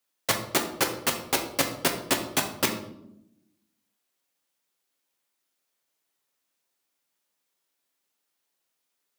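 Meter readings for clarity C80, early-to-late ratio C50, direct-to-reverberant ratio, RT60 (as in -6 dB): 11.5 dB, 8.5 dB, 3.0 dB, 0.80 s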